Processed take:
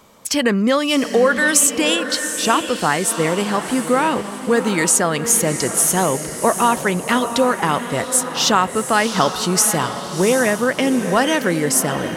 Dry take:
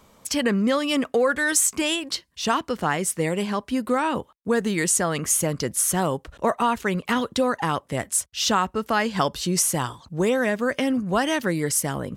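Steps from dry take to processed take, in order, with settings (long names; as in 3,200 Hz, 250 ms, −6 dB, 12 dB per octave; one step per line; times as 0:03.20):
low-shelf EQ 98 Hz −10.5 dB
feedback delay with all-pass diffusion 732 ms, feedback 44%, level −9 dB
level +6 dB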